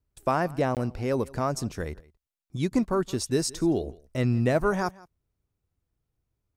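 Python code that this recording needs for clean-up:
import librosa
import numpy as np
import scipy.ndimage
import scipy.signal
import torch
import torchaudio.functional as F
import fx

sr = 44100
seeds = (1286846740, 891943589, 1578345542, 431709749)

y = fx.fix_interpolate(x, sr, at_s=(0.75,), length_ms=18.0)
y = fx.fix_echo_inverse(y, sr, delay_ms=168, level_db=-22.5)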